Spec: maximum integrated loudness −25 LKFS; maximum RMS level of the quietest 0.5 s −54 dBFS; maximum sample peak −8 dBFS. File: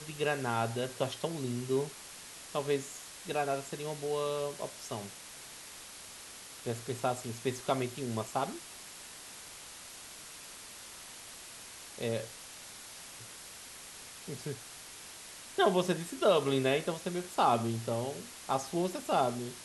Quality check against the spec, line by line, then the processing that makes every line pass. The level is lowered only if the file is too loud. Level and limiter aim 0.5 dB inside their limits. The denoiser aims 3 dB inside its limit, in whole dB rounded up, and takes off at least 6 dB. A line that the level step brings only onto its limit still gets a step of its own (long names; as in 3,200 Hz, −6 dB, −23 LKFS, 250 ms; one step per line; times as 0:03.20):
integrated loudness −34.0 LKFS: in spec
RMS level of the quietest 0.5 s −49 dBFS: out of spec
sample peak −14.0 dBFS: in spec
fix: broadband denoise 8 dB, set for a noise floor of −49 dBFS